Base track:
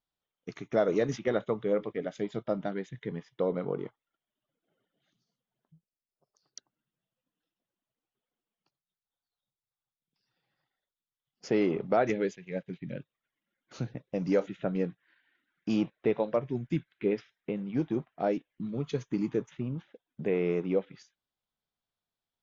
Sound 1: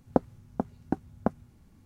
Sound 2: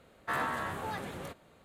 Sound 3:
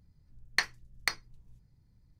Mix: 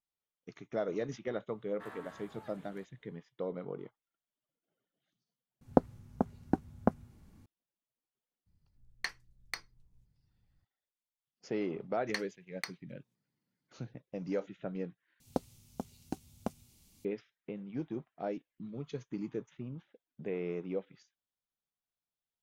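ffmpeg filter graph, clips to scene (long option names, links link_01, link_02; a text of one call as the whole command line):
ffmpeg -i bed.wav -i cue0.wav -i cue1.wav -i cue2.wav -filter_complex "[1:a]asplit=2[link_01][link_02];[3:a]asplit=2[link_03][link_04];[0:a]volume=-8.5dB[link_05];[link_04]highpass=frequency=190:width=0.5412,highpass=frequency=190:width=1.3066[link_06];[link_02]aexciter=amount=3.5:drive=9.7:freq=2400[link_07];[link_05]asplit=3[link_08][link_09][link_10];[link_08]atrim=end=5.614[link_11];[link_01]atrim=end=1.85,asetpts=PTS-STARTPTS,volume=-1dB[link_12];[link_09]atrim=start=7.456:end=15.204[link_13];[link_07]atrim=end=1.85,asetpts=PTS-STARTPTS,volume=-10dB[link_14];[link_10]atrim=start=17.046[link_15];[2:a]atrim=end=1.64,asetpts=PTS-STARTPTS,volume=-17.5dB,afade=type=in:duration=0.004:curve=hsin,afade=type=out:start_time=1.636:duration=0.004:curve=hsin,adelay=1520[link_16];[link_03]atrim=end=2.19,asetpts=PTS-STARTPTS,volume=-9.5dB,afade=type=in:duration=0.004:curve=hsin,afade=type=out:start_time=2.186:duration=0.004:curve=hsin,adelay=8460[link_17];[link_06]atrim=end=2.19,asetpts=PTS-STARTPTS,volume=-9.5dB,afade=type=in:duration=0.004:curve=hsin,afade=type=out:start_time=2.186:duration=0.004:curve=hsin,adelay=11560[link_18];[link_11][link_12]acrossfade=duration=0.004:curve1=hsin:curve2=hsin[link_19];[link_19][link_13]acrossfade=duration=0.004:curve1=hsin:curve2=hsin[link_20];[link_20][link_14]acrossfade=duration=0.004:curve1=hsin:curve2=hsin[link_21];[link_21][link_15]acrossfade=duration=0.004:curve1=hsin:curve2=hsin[link_22];[link_22][link_16][link_17][link_18]amix=inputs=4:normalize=0" out.wav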